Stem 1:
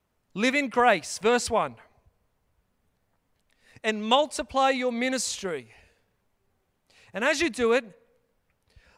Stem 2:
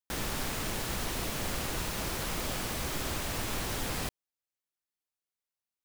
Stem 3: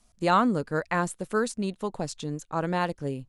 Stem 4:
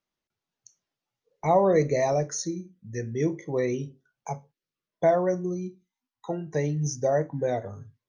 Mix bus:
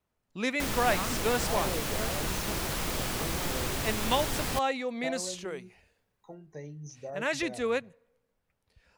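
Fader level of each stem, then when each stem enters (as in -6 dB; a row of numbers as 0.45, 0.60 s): -6.5, +2.0, -15.5, -16.0 dB; 0.00, 0.50, 0.65, 0.00 s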